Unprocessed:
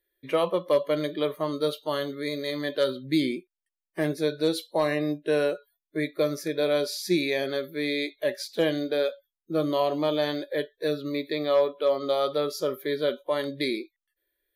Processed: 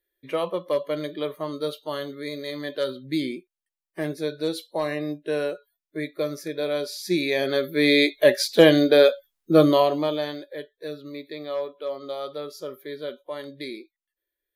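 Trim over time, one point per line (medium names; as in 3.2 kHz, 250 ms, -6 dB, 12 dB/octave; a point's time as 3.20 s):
6.94 s -2 dB
7.95 s +10.5 dB
9.62 s +10.5 dB
9.88 s +4 dB
10.51 s -7 dB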